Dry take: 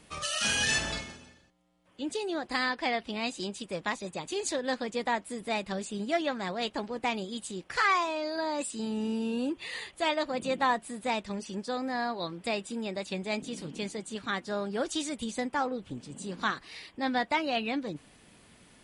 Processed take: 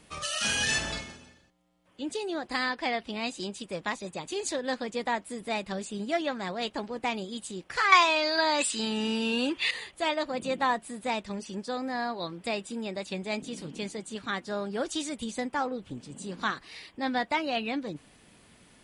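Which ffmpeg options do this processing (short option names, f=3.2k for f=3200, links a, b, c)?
-filter_complex "[0:a]asettb=1/sr,asplit=3[a][b][c];[a]atrim=end=7.924[d];[b]atrim=start=7.92:end=9.71,asetpts=PTS-STARTPTS,afade=t=in:d=0.004:c=qsin,afade=t=out:st=1.786:d=0.004:c=qsin,equalizer=f=3k:w=0.35:g=14[e];[c]atrim=start=9.706[f];[d][e]acrossfade=d=0.004:c1=hsin:c2=qsin[g];[g][f]acrossfade=d=0.004:c1=qsin:c2=hsin"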